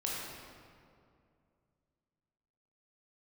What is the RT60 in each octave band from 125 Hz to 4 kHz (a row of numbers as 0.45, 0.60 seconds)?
3.1, 2.8, 2.6, 2.2, 1.8, 1.4 seconds